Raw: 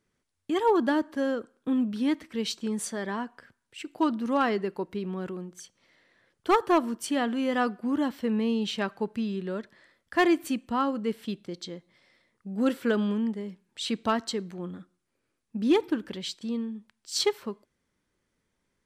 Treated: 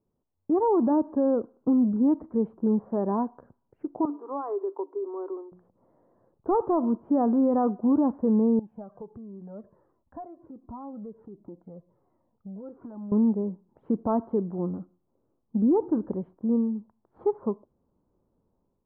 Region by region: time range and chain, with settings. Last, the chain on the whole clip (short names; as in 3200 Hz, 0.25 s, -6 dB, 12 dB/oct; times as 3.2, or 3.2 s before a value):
4.05–5.52 rippled Chebyshev high-pass 280 Hz, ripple 9 dB + compressor 3:1, threshold -34 dBFS
8.59–13.12 compressor 4:1, threshold -40 dBFS + cascading flanger falling 1.4 Hz
whole clip: steep low-pass 1000 Hz 36 dB/oct; AGC gain up to 7 dB; limiter -16 dBFS